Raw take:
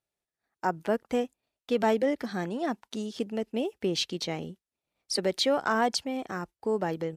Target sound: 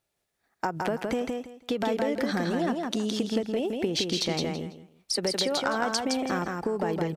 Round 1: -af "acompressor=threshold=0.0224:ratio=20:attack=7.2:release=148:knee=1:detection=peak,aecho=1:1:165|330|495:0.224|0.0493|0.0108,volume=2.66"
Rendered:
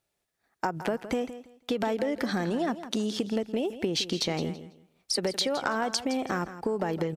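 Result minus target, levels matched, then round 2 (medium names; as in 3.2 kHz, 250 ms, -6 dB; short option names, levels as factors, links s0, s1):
echo-to-direct -9.5 dB
-af "acompressor=threshold=0.0224:ratio=20:attack=7.2:release=148:knee=1:detection=peak,aecho=1:1:165|330|495:0.668|0.147|0.0323,volume=2.66"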